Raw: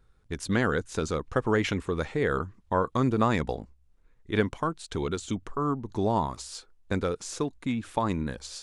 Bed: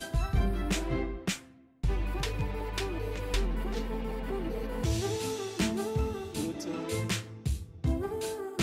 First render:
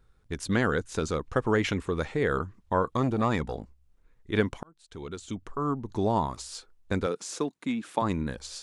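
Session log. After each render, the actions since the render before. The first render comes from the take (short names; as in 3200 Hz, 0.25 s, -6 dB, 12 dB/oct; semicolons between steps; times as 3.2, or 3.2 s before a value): 2.88–3.55 core saturation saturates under 430 Hz; 4.63–5.8 fade in; 7.06–8.02 HPF 170 Hz 24 dB/oct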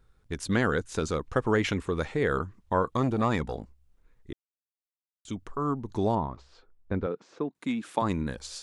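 4.33–5.25 mute; 6.15–7.55 tape spacing loss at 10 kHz 40 dB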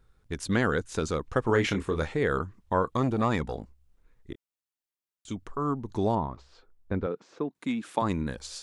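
1.45–2.13 doubler 26 ms -7 dB; 4.31–5.33 doubler 26 ms -13 dB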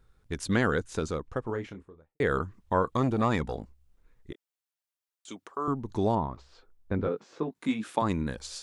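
0.62–2.2 studio fade out; 4.32–5.68 HPF 380 Hz; 6.97–7.91 doubler 19 ms -3.5 dB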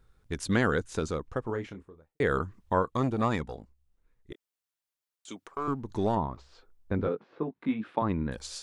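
2.75–4.31 upward expander, over -37 dBFS; 5.46–6.17 half-wave gain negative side -3 dB; 7.15–8.32 air absorption 390 m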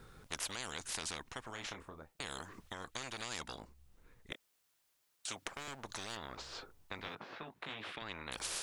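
limiter -19 dBFS, peak gain reduction 7.5 dB; spectral compressor 10:1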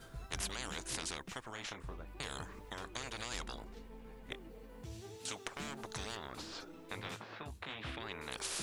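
add bed -18.5 dB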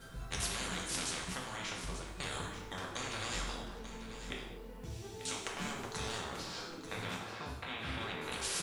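echo 0.889 s -11.5 dB; non-linear reverb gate 0.27 s falling, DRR -1.5 dB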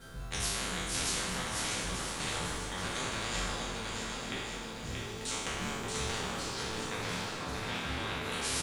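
spectral trails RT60 1.18 s; bouncing-ball echo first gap 0.63 s, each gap 0.8×, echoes 5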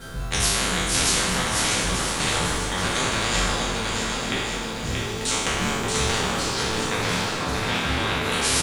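gain +12 dB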